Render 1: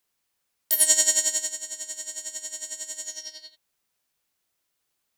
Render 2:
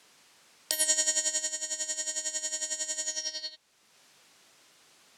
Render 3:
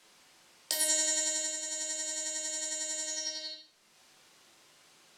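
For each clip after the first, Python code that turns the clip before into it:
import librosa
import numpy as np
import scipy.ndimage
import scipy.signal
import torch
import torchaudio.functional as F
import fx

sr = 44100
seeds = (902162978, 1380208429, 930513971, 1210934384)

y1 = scipy.signal.sosfilt(scipy.signal.butter(2, 7300.0, 'lowpass', fs=sr, output='sos'), x)
y1 = fx.band_squash(y1, sr, depth_pct=70)
y2 = fx.room_shoebox(y1, sr, seeds[0], volume_m3=110.0, walls='mixed', distance_m=0.91)
y2 = y2 * librosa.db_to_amplitude(-3.5)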